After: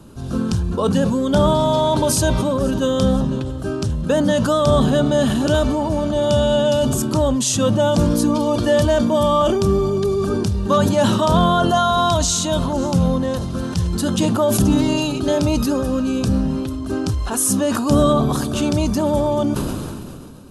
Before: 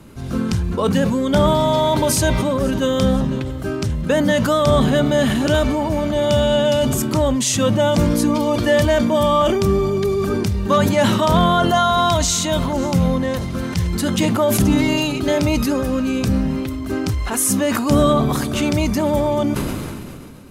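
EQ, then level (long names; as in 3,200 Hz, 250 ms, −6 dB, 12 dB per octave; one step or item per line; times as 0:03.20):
linear-phase brick-wall low-pass 12,000 Hz
parametric band 2,100 Hz −14 dB 0.41 octaves
0.0 dB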